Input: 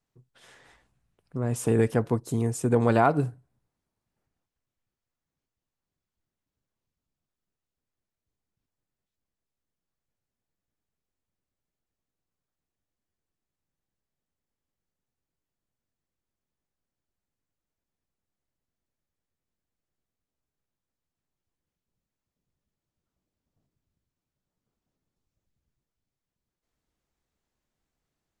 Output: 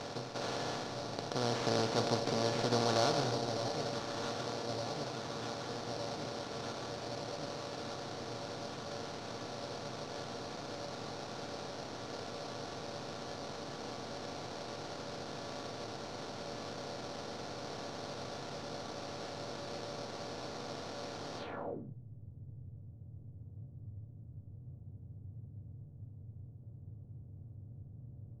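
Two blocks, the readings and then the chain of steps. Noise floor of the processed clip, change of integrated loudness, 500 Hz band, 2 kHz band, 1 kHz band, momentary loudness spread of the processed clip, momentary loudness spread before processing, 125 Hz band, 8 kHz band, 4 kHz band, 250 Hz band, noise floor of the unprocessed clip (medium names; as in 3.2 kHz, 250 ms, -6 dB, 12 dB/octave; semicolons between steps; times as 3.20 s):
-52 dBFS, -14.5 dB, -4.0 dB, -1.5 dB, -3.0 dB, 18 LU, 10 LU, -8.0 dB, 0.0 dB, +16.0 dB, -7.5 dB, under -85 dBFS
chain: spectral levelling over time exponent 0.2; feedback comb 570 Hz, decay 0.39 s, mix 80%; echo whose repeats swap between lows and highs 606 ms, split 860 Hz, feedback 85%, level -7 dB; sample-rate reducer 5 kHz, jitter 20%; low-pass sweep 5.2 kHz -> 100 Hz, 21.38–21.95 s; trim -3 dB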